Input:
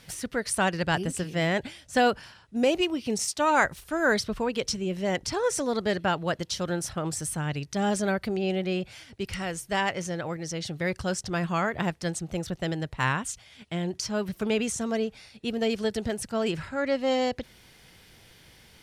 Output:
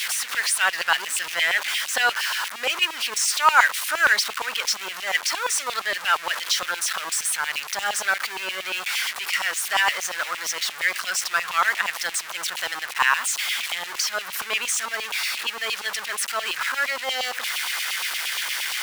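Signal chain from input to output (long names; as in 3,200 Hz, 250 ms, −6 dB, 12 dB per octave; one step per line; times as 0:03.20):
converter with a step at zero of −25.5 dBFS
auto-filter high-pass saw down 8.6 Hz 930–2,900 Hz
level +2.5 dB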